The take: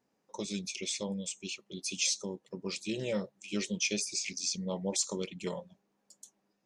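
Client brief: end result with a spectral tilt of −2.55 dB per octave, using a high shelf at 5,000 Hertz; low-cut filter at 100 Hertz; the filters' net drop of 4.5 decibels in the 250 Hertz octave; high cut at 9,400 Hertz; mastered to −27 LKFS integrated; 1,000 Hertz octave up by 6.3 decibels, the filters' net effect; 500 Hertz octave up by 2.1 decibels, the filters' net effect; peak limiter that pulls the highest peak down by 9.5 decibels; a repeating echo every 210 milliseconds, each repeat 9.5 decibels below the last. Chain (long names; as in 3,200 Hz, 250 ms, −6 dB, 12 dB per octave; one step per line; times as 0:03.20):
high-pass filter 100 Hz
low-pass filter 9,400 Hz
parametric band 250 Hz −7.5 dB
parametric band 500 Hz +3 dB
parametric band 1,000 Hz +7 dB
high-shelf EQ 5,000 Hz −3.5 dB
brickwall limiter −28 dBFS
repeating echo 210 ms, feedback 33%, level −9.5 dB
level +11.5 dB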